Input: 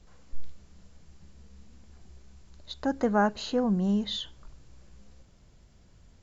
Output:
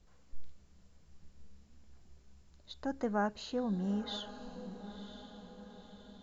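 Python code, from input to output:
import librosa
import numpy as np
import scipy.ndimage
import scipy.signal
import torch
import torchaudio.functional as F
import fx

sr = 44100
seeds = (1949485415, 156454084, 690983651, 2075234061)

y = fx.echo_diffused(x, sr, ms=981, feedback_pct=52, wet_db=-12.0)
y = F.gain(torch.from_numpy(y), -8.5).numpy()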